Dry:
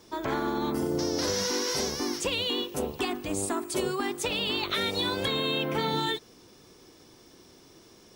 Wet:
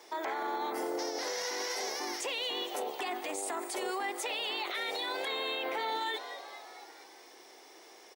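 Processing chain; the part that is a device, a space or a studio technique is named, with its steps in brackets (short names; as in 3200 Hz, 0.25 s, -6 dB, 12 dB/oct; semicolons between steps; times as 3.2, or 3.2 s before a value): frequency-shifting echo 0.227 s, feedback 58%, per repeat +130 Hz, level -20 dB; laptop speaker (HPF 370 Hz 24 dB/oct; bell 790 Hz +9.5 dB 0.42 oct; bell 2000 Hz +9 dB 0.43 oct; limiter -26.5 dBFS, peak gain reduction 13 dB)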